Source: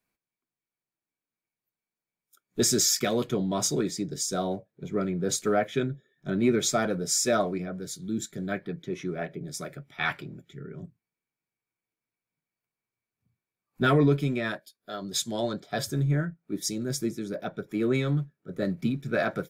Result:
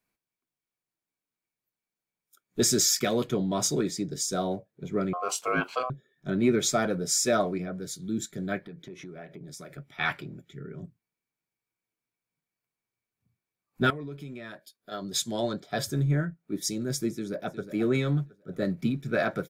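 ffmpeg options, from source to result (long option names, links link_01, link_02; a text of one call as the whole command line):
ffmpeg -i in.wav -filter_complex "[0:a]asettb=1/sr,asplit=3[link_01][link_02][link_03];[link_01]atrim=end=5.134[link_04];[link_02]atrim=start=5.13:end=5.9,asetpts=PTS-STARTPTS,afade=type=in:duration=0.004:curve=qsin,afade=type=out:start_time=0.766:duration=0.004:curve=qsin,aeval=exprs='val(0)*sin(2*PI*890*n/s)':channel_layout=same[link_05];[link_03]atrim=start=5.896[link_06];[link_04][link_05]acrossfade=duration=0.004:curve1=hsin:curve2=qsin[link_07];[link_07][link_06]acrossfade=duration=0.004:curve1=qsin:curve2=hsin,asettb=1/sr,asplit=3[link_08][link_09][link_10];[link_08]atrim=end=8.624[link_11];[link_09]atrim=start=8.62:end=9.78,asetpts=PTS-STARTPTS,afade=type=in:duration=0.004:curve=qsin,afade=type=out:start_time=1.156:duration=0.004:curve=qsin,acompressor=threshold=-40dB:ratio=5:attack=3.2:release=140:knee=1:detection=peak[link_12];[link_10]atrim=start=9.776[link_13];[link_11][link_12]acrossfade=duration=0.004:curve1=hsin:curve2=qsin[link_14];[link_14][link_13]acrossfade=duration=0.004:curve1=qsin:curve2=hsin,asettb=1/sr,asplit=3[link_15][link_16][link_17];[link_15]atrim=end=13.904[link_18];[link_16]atrim=start=13.9:end=14.92,asetpts=PTS-STARTPTS,afade=type=in:duration=0.004:curve=qsin,afade=type=out:start_time=1.016:duration=0.004:curve=qsin,acompressor=threshold=-41dB:ratio=3:attack=3.2:release=140:knee=1:detection=peak[link_19];[link_17]atrim=start=14.916[link_20];[link_18][link_19]acrossfade=duration=0.004:curve1=hsin:curve2=qsin[link_21];[link_21][link_20]acrossfade=duration=0.004:curve1=qsin:curve2=hsin,asplit=2[link_22][link_23];[link_23]afade=type=in:start_time=17.11:duration=0.01,afade=type=out:start_time=17.7:duration=0.01,aecho=0:1:360|720|1080:0.266073|0.0798218|0.0239465[link_24];[link_22][link_24]amix=inputs=2:normalize=0" out.wav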